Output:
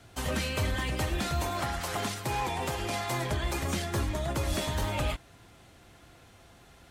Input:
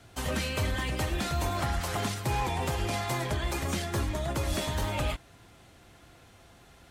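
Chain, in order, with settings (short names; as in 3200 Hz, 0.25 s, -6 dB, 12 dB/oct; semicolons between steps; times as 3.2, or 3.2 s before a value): 1.42–3.13 low shelf 140 Hz -8 dB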